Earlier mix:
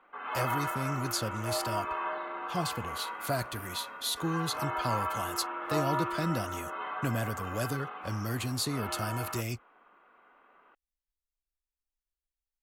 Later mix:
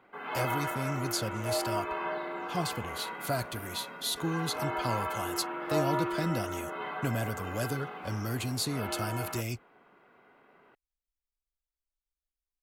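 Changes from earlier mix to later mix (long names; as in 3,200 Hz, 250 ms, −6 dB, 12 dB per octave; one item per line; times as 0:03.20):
background: remove loudspeaker in its box 340–3,500 Hz, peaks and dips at 400 Hz −7 dB, 670 Hz −3 dB, 1,200 Hz +6 dB, 1,900 Hz −6 dB
master: add notch filter 1,800 Hz, Q 12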